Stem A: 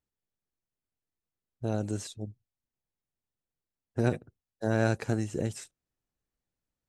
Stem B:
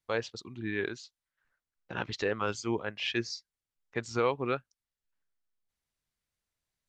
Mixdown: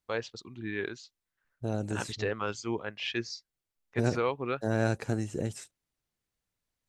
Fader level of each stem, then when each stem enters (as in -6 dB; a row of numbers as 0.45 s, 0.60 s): -1.5 dB, -1.5 dB; 0.00 s, 0.00 s